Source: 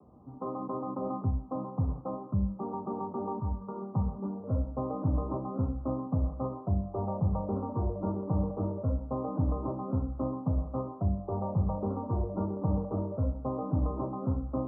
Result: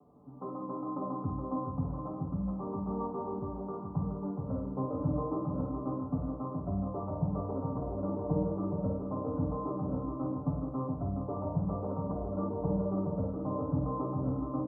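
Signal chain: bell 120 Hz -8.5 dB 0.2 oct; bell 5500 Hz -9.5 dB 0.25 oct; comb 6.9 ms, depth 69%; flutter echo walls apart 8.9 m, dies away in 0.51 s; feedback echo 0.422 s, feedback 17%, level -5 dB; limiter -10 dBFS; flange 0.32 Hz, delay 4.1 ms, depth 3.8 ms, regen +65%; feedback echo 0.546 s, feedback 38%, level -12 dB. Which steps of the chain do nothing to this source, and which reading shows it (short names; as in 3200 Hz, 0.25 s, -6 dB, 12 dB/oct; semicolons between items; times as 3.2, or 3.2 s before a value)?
bell 5500 Hz: input band ends at 1200 Hz; limiter -10 dBFS: input peak -13.0 dBFS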